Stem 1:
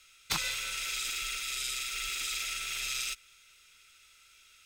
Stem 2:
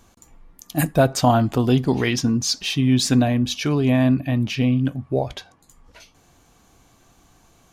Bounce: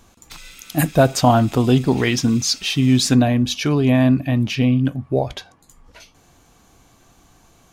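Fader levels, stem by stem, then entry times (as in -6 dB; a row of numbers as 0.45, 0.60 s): -8.5, +2.5 dB; 0.00, 0.00 s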